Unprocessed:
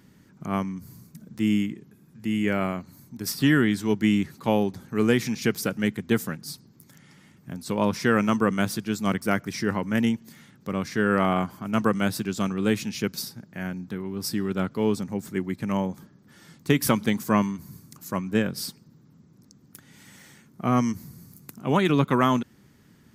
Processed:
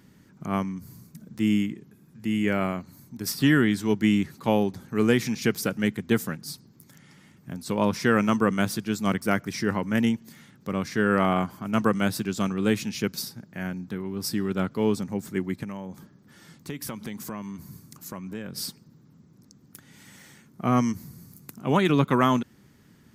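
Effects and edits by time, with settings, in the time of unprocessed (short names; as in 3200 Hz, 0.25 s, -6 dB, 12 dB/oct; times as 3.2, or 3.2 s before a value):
15.63–18.56 compressor 4:1, threshold -33 dBFS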